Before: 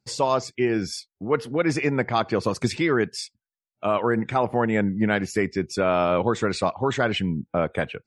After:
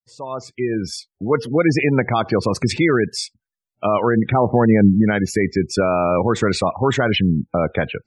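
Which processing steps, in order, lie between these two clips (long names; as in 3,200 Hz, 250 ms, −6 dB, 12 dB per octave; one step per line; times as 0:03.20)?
fade in at the beginning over 1.49 s
low-shelf EQ 150 Hz +4 dB
brickwall limiter −13 dBFS, peak gain reduction 6 dB
gate on every frequency bin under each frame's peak −25 dB strong
0:04.32–0:05.01: tilt shelving filter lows +4 dB
level +7 dB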